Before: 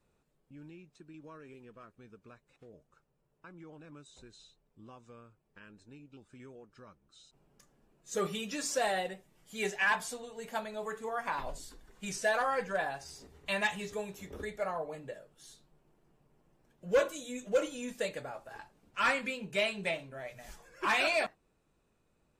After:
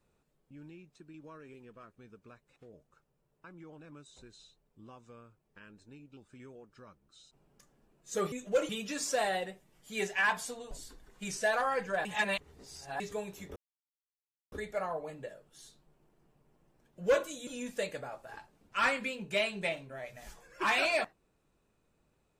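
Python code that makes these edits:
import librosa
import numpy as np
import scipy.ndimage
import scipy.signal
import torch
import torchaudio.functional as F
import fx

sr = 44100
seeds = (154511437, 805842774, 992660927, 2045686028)

y = fx.edit(x, sr, fx.cut(start_s=10.34, length_s=1.18),
    fx.reverse_span(start_s=12.86, length_s=0.95),
    fx.insert_silence(at_s=14.37, length_s=0.96),
    fx.move(start_s=17.32, length_s=0.37, to_s=8.32), tone=tone)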